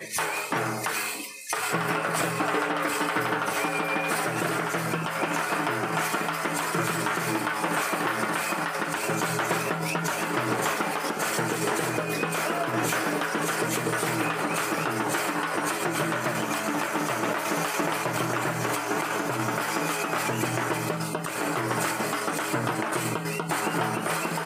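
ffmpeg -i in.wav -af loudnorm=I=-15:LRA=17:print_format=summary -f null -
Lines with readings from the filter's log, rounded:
Input Integrated:    -27.0 LUFS
Input True Peak:     -13.9 dBTP
Input LRA:             1.0 LU
Input Threshold:     -37.0 LUFS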